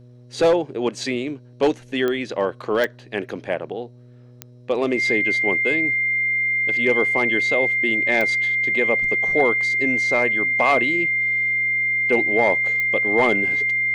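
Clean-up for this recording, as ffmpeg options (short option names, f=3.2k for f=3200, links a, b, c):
-af "adeclick=t=4,bandreject=f=122.6:t=h:w=4,bandreject=f=245.2:t=h:w=4,bandreject=f=367.8:t=h:w=4,bandreject=f=490.4:t=h:w=4,bandreject=f=613:t=h:w=4,bandreject=f=2.1k:w=30"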